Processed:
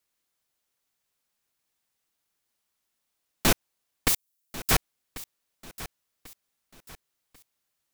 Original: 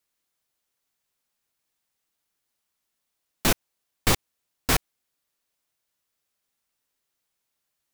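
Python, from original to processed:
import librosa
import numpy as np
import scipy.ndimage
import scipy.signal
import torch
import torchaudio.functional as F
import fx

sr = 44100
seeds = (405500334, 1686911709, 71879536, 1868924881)

y = fx.pre_emphasis(x, sr, coefficient=0.9, at=(4.08, 4.71))
y = fx.echo_feedback(y, sr, ms=1092, feedback_pct=37, wet_db=-16.5)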